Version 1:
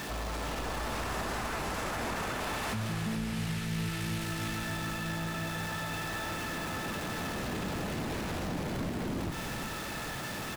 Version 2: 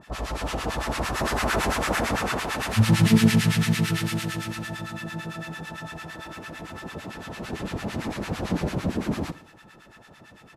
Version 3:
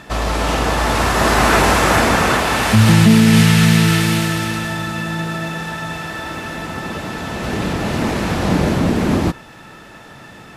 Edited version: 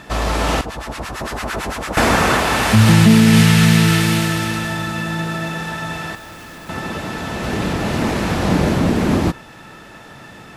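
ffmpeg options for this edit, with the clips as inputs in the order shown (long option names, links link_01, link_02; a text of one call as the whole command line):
ffmpeg -i take0.wav -i take1.wav -i take2.wav -filter_complex "[2:a]asplit=3[link_01][link_02][link_03];[link_01]atrim=end=0.612[link_04];[1:a]atrim=start=0.608:end=1.972[link_05];[link_02]atrim=start=1.968:end=6.152[link_06];[0:a]atrim=start=6.148:end=6.692[link_07];[link_03]atrim=start=6.688[link_08];[link_04][link_05]acrossfade=duration=0.004:curve1=hsin:curve2=hsin[link_09];[link_09][link_06]acrossfade=duration=0.004:curve1=hsin:curve2=hsin[link_10];[link_10][link_07]acrossfade=duration=0.004:curve1=hsin:curve2=hsin[link_11];[link_11][link_08]acrossfade=duration=0.004:curve1=hsin:curve2=hsin" out.wav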